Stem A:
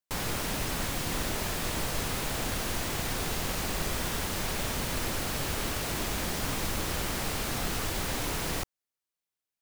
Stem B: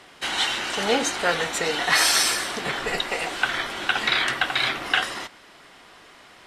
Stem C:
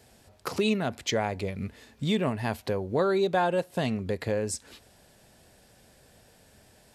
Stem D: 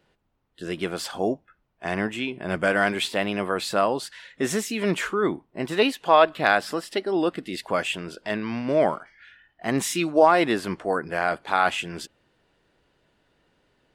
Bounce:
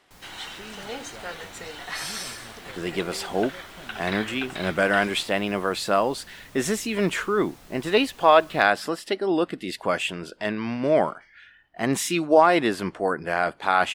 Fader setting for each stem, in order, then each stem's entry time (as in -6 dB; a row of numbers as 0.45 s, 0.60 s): -18.5 dB, -13.5 dB, -19.0 dB, +0.5 dB; 0.00 s, 0.00 s, 0.00 s, 2.15 s